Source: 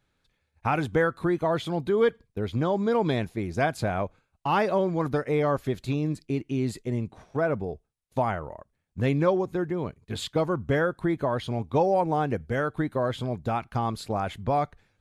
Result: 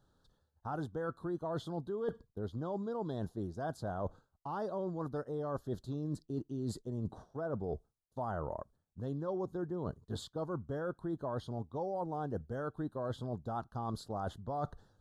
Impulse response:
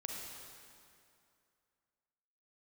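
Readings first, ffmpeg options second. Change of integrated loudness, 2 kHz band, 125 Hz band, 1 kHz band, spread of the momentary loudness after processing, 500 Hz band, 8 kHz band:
-12.5 dB, -19.0 dB, -11.0 dB, -13.0 dB, 5 LU, -12.5 dB, -11.0 dB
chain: -af "areverse,acompressor=threshold=-37dB:ratio=10,areverse,asuperstop=centerf=2300:order=4:qfactor=1,highshelf=f=4.9k:g=-6.5,volume=2.5dB"

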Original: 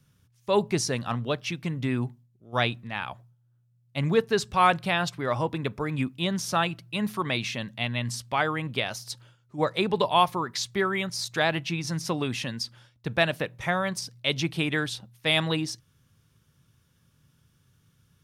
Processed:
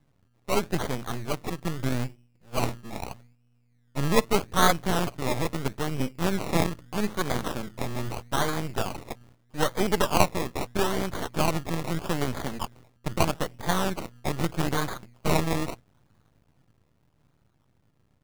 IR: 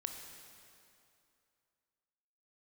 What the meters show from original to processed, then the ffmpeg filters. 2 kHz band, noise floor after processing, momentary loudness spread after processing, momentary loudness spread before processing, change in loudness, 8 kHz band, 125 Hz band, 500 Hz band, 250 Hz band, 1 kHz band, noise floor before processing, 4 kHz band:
-4.5 dB, -67 dBFS, 13 LU, 10 LU, -1.5 dB, +1.0 dB, +0.5 dB, -1.0 dB, +0.5 dB, -1.5 dB, -66 dBFS, -4.5 dB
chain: -af "acrusher=samples=23:mix=1:aa=0.000001:lfo=1:lforange=13.8:lforate=0.79,dynaudnorm=f=100:g=31:m=3dB,aeval=exprs='max(val(0),0)':c=same,volume=1.5dB"

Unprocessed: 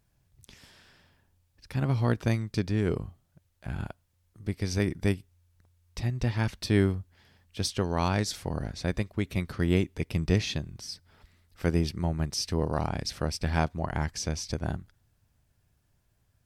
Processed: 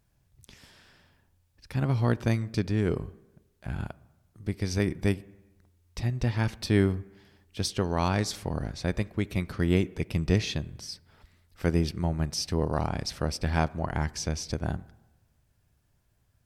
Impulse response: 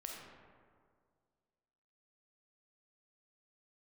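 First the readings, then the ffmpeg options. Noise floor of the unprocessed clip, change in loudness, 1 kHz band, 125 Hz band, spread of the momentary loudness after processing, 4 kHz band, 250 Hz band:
-71 dBFS, +0.5 dB, +0.5 dB, +0.5 dB, 12 LU, 0.0 dB, +1.0 dB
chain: -filter_complex "[0:a]asplit=2[a][b];[1:a]atrim=start_sample=2205,asetrate=83790,aresample=44100,lowpass=2.6k[c];[b][c]afir=irnorm=-1:irlink=0,volume=-9dB[d];[a][d]amix=inputs=2:normalize=0"

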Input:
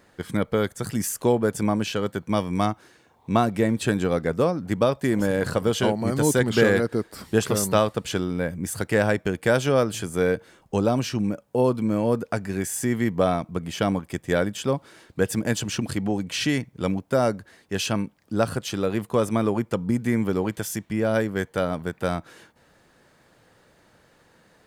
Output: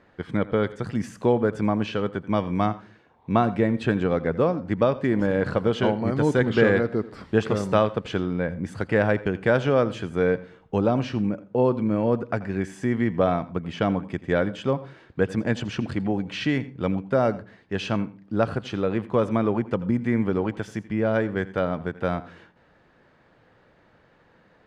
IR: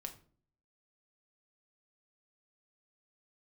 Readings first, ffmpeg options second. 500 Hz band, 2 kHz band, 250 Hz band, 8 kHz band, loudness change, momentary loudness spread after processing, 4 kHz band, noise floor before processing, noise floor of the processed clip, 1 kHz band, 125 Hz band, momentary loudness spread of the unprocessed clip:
0.0 dB, -0.5 dB, 0.0 dB, under -15 dB, 0.0 dB, 7 LU, -5.0 dB, -60 dBFS, -59 dBFS, 0.0 dB, 0.0 dB, 7 LU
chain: -filter_complex "[0:a]lowpass=2.8k,asplit=2[a][b];[1:a]atrim=start_sample=2205,asetrate=57330,aresample=44100,adelay=84[c];[b][c]afir=irnorm=-1:irlink=0,volume=-11dB[d];[a][d]amix=inputs=2:normalize=0"

